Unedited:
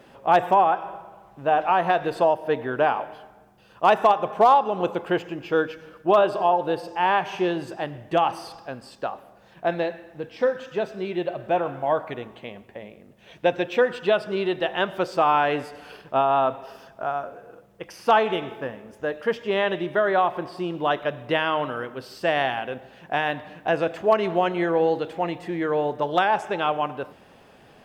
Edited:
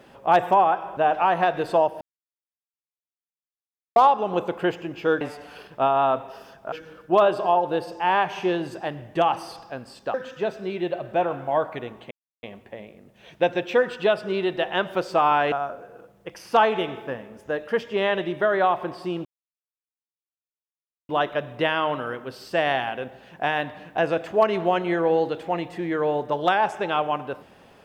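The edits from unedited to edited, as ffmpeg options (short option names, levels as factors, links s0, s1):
-filter_complex "[0:a]asplit=10[s0][s1][s2][s3][s4][s5][s6][s7][s8][s9];[s0]atrim=end=0.972[s10];[s1]atrim=start=1.438:end=2.48,asetpts=PTS-STARTPTS,afade=t=out:st=1.038:d=0.004:c=hsin[s11];[s2]atrim=start=2.48:end=4.43,asetpts=PTS-STARTPTS,volume=0[s12];[s3]atrim=start=4.43:end=5.682,asetpts=PTS-STARTPTS,afade=t=in:d=0.004:c=hsin[s13];[s4]atrim=start=15.548:end=17.062[s14];[s5]atrim=start=5.678:end=9.102[s15];[s6]atrim=start=10.488:end=12.46,asetpts=PTS-STARTPTS,afade=t=out:st=1.968:d=0.004:c=hsin,apad=pad_dur=0.32[s16];[s7]atrim=start=12.46:end=15.552,asetpts=PTS-STARTPTS,afade=t=in:d=0.004:c=hsin[s17];[s8]atrim=start=17.058:end=20.79,asetpts=PTS-STARTPTS,afade=t=out:st=3.728:d=0.004:c=hsin,apad=pad_dur=1.84[s18];[s9]atrim=start=20.79,asetpts=PTS-STARTPTS,afade=t=in:d=0.004:c=hsin[s19];[s11][s12][s13]concat=n=3:v=0:a=1[s20];[s10][s20]acrossfade=d=0.004:c1=hsin:c2=hsin[s21];[s21][s14]acrossfade=d=0.004:c1=hsin:c2=hsin[s22];[s22][s15]acrossfade=d=0.004:c1=hsin:c2=hsin[s23];[s16][s17]concat=n=2:v=0:a=1[s24];[s23][s24]acrossfade=d=0.004:c1=hsin:c2=hsin[s25];[s18][s19]concat=n=2:v=0:a=1[s26];[s25][s26]acrossfade=d=0.004:c1=hsin:c2=hsin"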